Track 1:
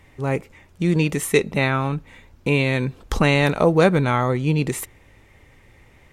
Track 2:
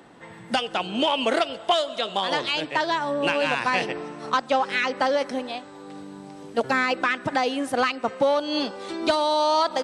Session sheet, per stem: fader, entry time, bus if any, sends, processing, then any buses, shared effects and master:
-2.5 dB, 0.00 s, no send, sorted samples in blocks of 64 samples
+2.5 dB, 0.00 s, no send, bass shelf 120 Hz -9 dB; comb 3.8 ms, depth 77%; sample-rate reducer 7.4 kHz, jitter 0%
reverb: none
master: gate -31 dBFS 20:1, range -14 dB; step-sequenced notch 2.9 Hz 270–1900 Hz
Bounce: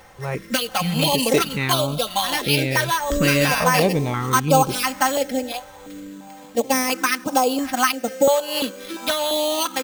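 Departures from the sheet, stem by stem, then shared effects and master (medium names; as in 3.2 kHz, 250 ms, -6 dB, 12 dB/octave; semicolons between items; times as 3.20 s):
stem 1: missing sorted samples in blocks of 64 samples; master: missing gate -31 dBFS 20:1, range -14 dB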